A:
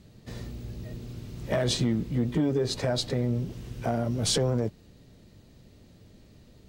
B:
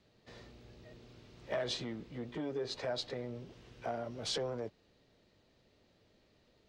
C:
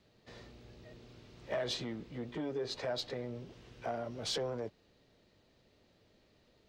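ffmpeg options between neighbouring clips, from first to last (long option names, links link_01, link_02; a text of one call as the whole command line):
ffmpeg -i in.wav -filter_complex "[0:a]acrossover=split=370 5800:gain=0.224 1 0.112[link_01][link_02][link_03];[link_01][link_02][link_03]amix=inputs=3:normalize=0,volume=-7dB" out.wav
ffmpeg -i in.wav -af "asoftclip=type=tanh:threshold=-25.5dB,volume=1dB" out.wav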